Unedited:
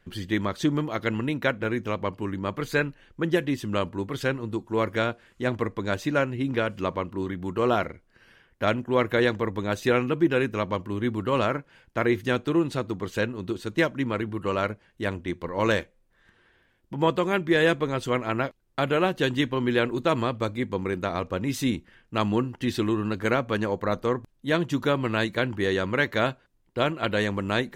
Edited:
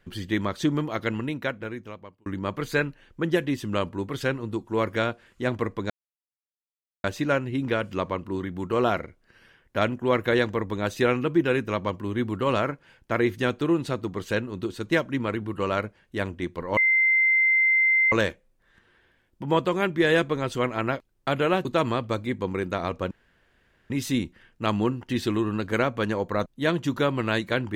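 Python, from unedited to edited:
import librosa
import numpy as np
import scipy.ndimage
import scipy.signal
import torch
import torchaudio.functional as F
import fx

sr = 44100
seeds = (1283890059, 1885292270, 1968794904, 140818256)

y = fx.edit(x, sr, fx.fade_out_span(start_s=0.98, length_s=1.28),
    fx.insert_silence(at_s=5.9, length_s=1.14),
    fx.insert_tone(at_s=15.63, length_s=1.35, hz=2080.0, db=-17.0),
    fx.cut(start_s=19.16, length_s=0.8),
    fx.insert_room_tone(at_s=21.42, length_s=0.79),
    fx.cut(start_s=23.98, length_s=0.34), tone=tone)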